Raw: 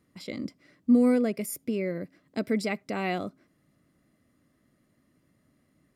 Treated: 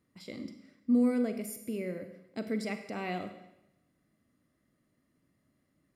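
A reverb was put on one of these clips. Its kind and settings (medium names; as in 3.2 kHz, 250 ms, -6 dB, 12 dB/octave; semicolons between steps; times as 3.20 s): Schroeder reverb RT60 0.89 s, combs from 33 ms, DRR 7.5 dB; trim -7 dB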